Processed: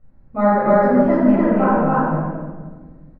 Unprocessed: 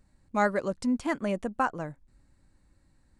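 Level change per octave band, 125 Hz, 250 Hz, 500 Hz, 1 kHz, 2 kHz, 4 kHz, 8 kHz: +17.5 dB, +15.0 dB, +15.0 dB, +12.5 dB, +6.5 dB, no reading, under -20 dB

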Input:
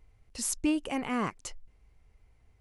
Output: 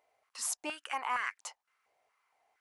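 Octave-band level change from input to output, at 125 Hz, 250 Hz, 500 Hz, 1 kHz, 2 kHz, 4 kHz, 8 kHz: under -30 dB, -21.5 dB, -10.0 dB, +1.0 dB, +3.0 dB, -2.0 dB, -3.0 dB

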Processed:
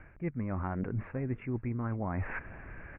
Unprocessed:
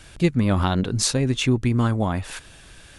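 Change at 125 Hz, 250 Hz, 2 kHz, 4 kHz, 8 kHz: -13.0 dB, -13.5 dB, -10.0 dB, under -40 dB, under -40 dB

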